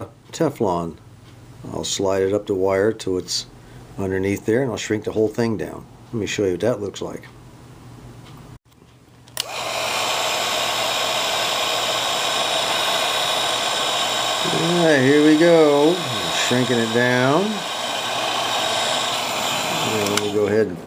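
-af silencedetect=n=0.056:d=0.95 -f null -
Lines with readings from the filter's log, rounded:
silence_start: 7.16
silence_end: 9.37 | silence_duration: 2.22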